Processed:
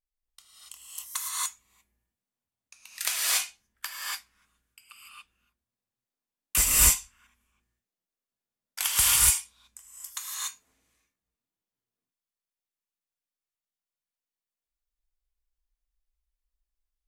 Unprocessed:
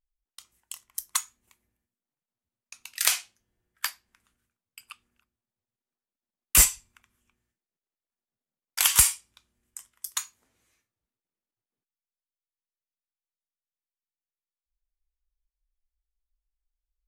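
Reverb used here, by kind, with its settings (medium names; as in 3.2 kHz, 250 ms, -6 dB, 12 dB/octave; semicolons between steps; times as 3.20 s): gated-style reverb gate 310 ms rising, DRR -6.5 dB; trim -7 dB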